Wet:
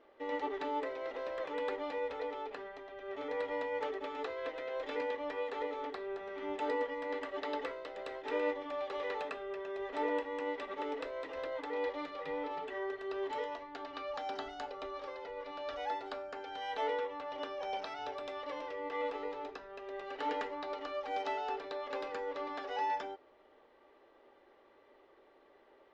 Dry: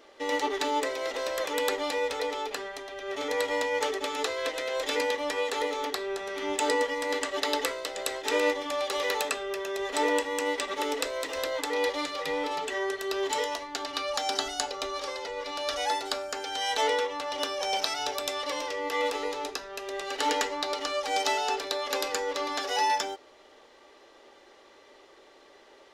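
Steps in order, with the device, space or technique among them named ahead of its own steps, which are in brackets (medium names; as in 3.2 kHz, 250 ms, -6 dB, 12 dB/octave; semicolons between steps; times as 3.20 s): phone in a pocket (low-pass 3.1 kHz 12 dB/octave; treble shelf 2.5 kHz -10 dB); trim -7 dB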